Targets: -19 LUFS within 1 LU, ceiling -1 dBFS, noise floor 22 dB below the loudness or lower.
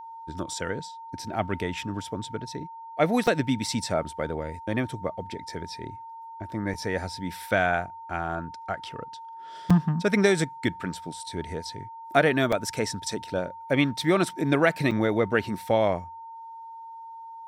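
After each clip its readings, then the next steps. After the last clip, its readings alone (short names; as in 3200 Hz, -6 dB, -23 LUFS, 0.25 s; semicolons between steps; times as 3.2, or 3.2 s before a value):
dropouts 5; longest dropout 4.7 ms; steady tone 910 Hz; tone level -39 dBFS; loudness -27.5 LUFS; peak -5.0 dBFS; loudness target -19.0 LUFS
-> interpolate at 3.27/6.74/9.7/12.52/14.91, 4.7 ms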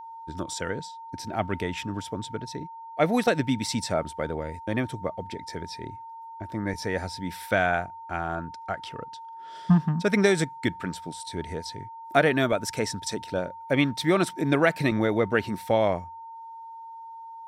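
dropouts 0; steady tone 910 Hz; tone level -39 dBFS
-> notch 910 Hz, Q 30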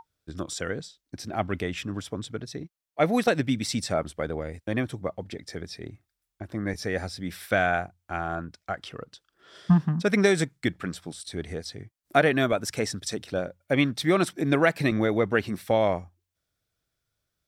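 steady tone none; loudness -27.0 LUFS; peak -5.5 dBFS; loudness target -19.0 LUFS
-> gain +8 dB; limiter -1 dBFS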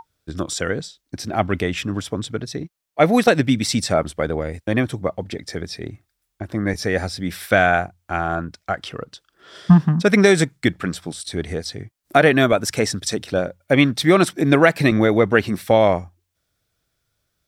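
loudness -19.5 LUFS; peak -1.0 dBFS; noise floor -75 dBFS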